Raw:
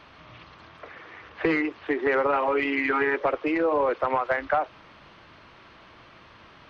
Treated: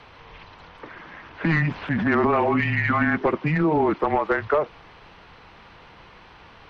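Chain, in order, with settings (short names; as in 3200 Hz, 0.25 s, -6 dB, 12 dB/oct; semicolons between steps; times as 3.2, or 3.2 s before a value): 1.26–2.61 transient shaper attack -3 dB, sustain +8 dB; frequency shift -160 Hz; gain +3 dB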